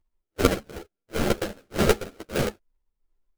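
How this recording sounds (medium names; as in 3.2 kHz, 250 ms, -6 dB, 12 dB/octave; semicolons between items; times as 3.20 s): a buzz of ramps at a fixed pitch in blocks of 32 samples; phasing stages 6, 0.87 Hz, lowest notch 750–2600 Hz; aliases and images of a low sample rate 1 kHz, jitter 20%; a shimmering, thickened sound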